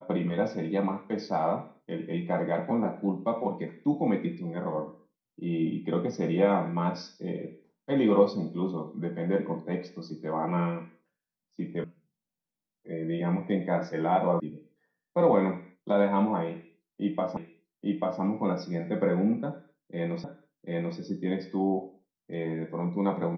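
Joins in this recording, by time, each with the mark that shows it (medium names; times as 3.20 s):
11.84 s: sound stops dead
14.40 s: sound stops dead
17.37 s: repeat of the last 0.84 s
20.24 s: repeat of the last 0.74 s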